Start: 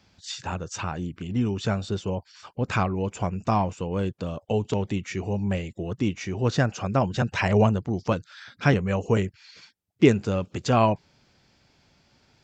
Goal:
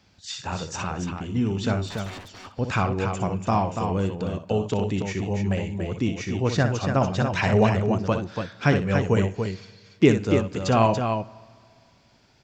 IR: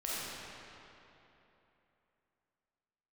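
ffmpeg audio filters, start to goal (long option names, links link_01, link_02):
-filter_complex "[0:a]asettb=1/sr,asplit=3[link_01][link_02][link_03];[link_01]atrim=end=1.884[link_04];[link_02]atrim=start=1.88:end=2.59,asetpts=PTS-STARTPTS,afade=type=in:duration=0.004:curve=qsin,afade=type=out:start_time=0.706:duration=0.004:curve=qsin,aeval=exprs='0.0188*(abs(mod(val(0)/0.0188+3,4)-2)-1)':channel_layout=same[link_05];[link_03]atrim=start=2.586[link_06];[link_04][link_05]acrossfade=duration=0.004:curve1=hsin:curve2=qsin[link_07];[link_07][link_06]acrossfade=duration=0.004:curve1=qsin:curve2=hsin,aecho=1:1:61.22|285.7:0.355|0.501,asplit=2[link_08][link_09];[1:a]atrim=start_sample=2205,asetrate=66150,aresample=44100[link_10];[link_09][link_10]afir=irnorm=-1:irlink=0,volume=-22dB[link_11];[link_08][link_11]amix=inputs=2:normalize=0"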